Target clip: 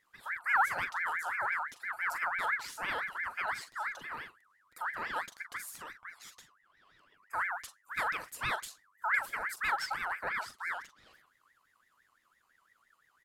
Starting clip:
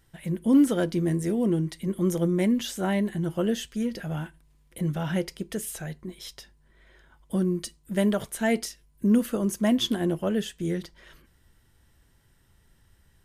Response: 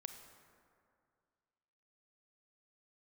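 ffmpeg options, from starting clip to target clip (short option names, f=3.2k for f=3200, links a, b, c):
-filter_complex "[0:a]asplit=2[a][b];[b]adelay=42,volume=-9.5dB[c];[a][c]amix=inputs=2:normalize=0,aeval=exprs='val(0)*sin(2*PI*1500*n/s+1500*0.3/5.9*sin(2*PI*5.9*n/s))':c=same,volume=-7.5dB"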